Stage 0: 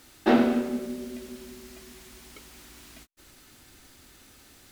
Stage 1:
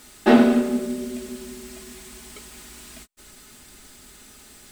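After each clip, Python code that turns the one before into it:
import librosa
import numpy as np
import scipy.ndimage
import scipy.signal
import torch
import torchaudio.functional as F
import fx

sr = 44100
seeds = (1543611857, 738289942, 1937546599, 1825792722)

y = fx.peak_eq(x, sr, hz=8200.0, db=8.0, octaves=0.28)
y = y + 0.46 * np.pad(y, (int(4.8 * sr / 1000.0), 0))[:len(y)]
y = y * librosa.db_to_amplitude(4.5)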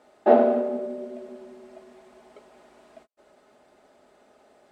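y = fx.bandpass_q(x, sr, hz=620.0, q=3.3)
y = y * librosa.db_to_amplitude(6.5)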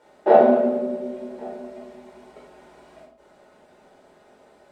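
y = x + 10.0 ** (-23.5 / 20.0) * np.pad(x, (int(1114 * sr / 1000.0), 0))[:len(x)]
y = fx.room_shoebox(y, sr, seeds[0], volume_m3=730.0, walls='furnished', distance_m=4.7)
y = y * librosa.db_to_amplitude(-2.0)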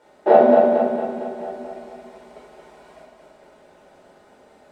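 y = fx.echo_feedback(x, sr, ms=227, feedback_pct=55, wet_db=-5)
y = y * librosa.db_to_amplitude(1.0)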